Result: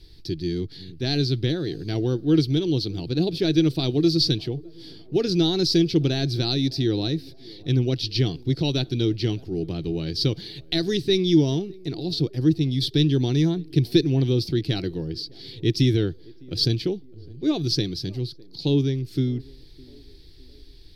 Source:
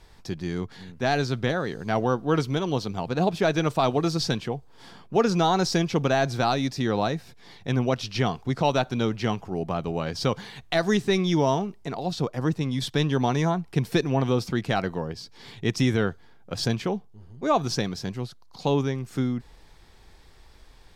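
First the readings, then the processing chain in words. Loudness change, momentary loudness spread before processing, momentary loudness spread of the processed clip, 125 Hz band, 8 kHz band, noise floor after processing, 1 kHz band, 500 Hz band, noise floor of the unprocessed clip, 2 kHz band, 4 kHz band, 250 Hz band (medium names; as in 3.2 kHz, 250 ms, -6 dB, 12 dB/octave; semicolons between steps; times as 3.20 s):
+2.5 dB, 10 LU, 11 LU, +4.5 dB, -2.0 dB, -45 dBFS, -15.5 dB, -0.5 dB, -51 dBFS, -7.5 dB, +6.5 dB, +4.0 dB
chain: FFT filter 150 Hz 0 dB, 220 Hz -11 dB, 320 Hz +5 dB, 550 Hz -15 dB, 1.1 kHz -25 dB, 1.7 kHz -14 dB, 2.8 kHz -6 dB, 4.5 kHz +6 dB, 7.1 kHz -15 dB, 11 kHz -4 dB; on a send: band-passed feedback delay 608 ms, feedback 55%, band-pass 470 Hz, level -22 dB; on the sum: trim +5 dB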